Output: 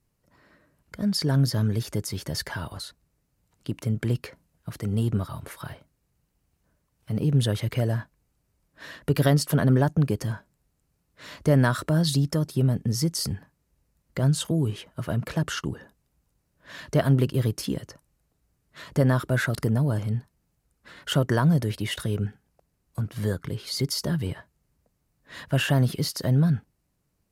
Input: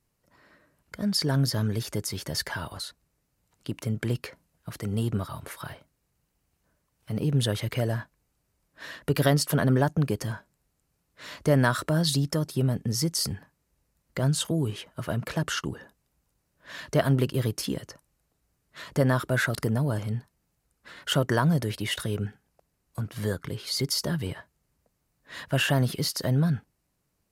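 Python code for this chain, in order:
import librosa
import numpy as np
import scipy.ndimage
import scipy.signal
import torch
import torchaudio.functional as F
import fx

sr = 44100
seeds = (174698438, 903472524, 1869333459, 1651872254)

y = fx.low_shelf(x, sr, hz=340.0, db=5.5)
y = F.gain(torch.from_numpy(y), -1.5).numpy()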